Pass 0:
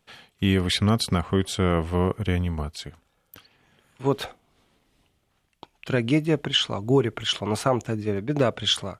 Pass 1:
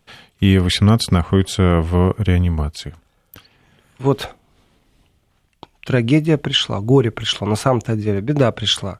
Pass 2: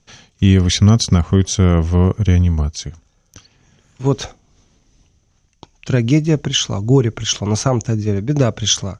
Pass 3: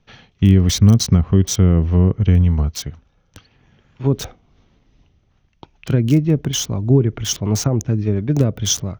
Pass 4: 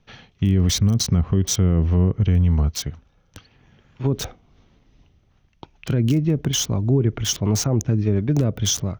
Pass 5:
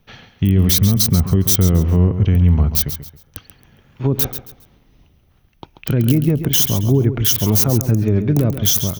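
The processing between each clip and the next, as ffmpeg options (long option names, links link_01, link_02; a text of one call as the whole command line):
ffmpeg -i in.wav -af "lowshelf=frequency=170:gain=6.5,volume=5dB" out.wav
ffmpeg -i in.wav -af "lowpass=frequency=6100:width_type=q:width=10,lowshelf=frequency=280:gain=8,volume=-4dB" out.wav
ffmpeg -i in.wav -filter_complex "[0:a]acrossover=split=450|4200[link_01][link_02][link_03];[link_02]acompressor=threshold=-31dB:ratio=6[link_04];[link_03]acrusher=bits=4:mix=0:aa=0.000001[link_05];[link_01][link_04][link_05]amix=inputs=3:normalize=0" out.wav
ffmpeg -i in.wav -af "alimiter=limit=-10.5dB:level=0:latency=1:release=53" out.wav
ffmpeg -i in.wav -filter_complex "[0:a]aexciter=amount=8.5:drive=1.5:freq=9100,asplit=2[link_01][link_02];[link_02]aecho=0:1:136|272|408:0.299|0.0866|0.0251[link_03];[link_01][link_03]amix=inputs=2:normalize=0,volume=3.5dB" out.wav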